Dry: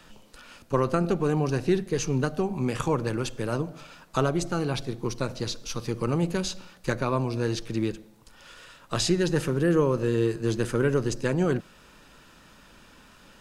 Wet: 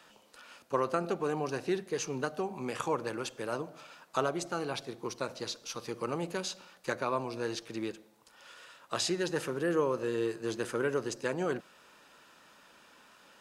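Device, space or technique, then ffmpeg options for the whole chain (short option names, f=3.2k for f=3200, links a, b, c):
filter by subtraction: -filter_complex "[0:a]asplit=2[a][b];[b]lowpass=700,volume=-1[c];[a][c]amix=inputs=2:normalize=0,volume=-5dB"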